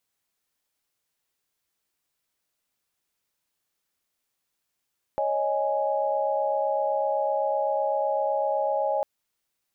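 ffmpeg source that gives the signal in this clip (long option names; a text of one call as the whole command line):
ffmpeg -f lavfi -i "aevalsrc='0.0447*(sin(2*PI*554.37*t)+sin(2*PI*622.25*t)+sin(2*PI*830.61*t))':duration=3.85:sample_rate=44100" out.wav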